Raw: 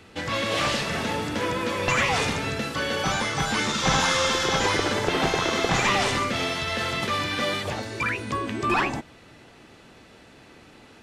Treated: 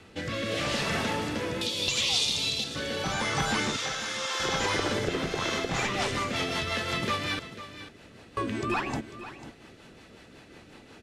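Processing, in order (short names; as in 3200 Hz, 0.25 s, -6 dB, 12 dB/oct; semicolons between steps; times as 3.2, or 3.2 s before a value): 1.61–2.64 resonant high shelf 2500 Hz +14 dB, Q 3; 3.76–4.4 HPF 660 Hz 12 dB/oct; 7.39–8.37 room tone; compressor 10:1, threshold -24 dBFS, peak gain reduction 15.5 dB; rotary speaker horn 0.8 Hz, later 5.5 Hz, at 5.12; echo 0.495 s -13.5 dB; gain +1 dB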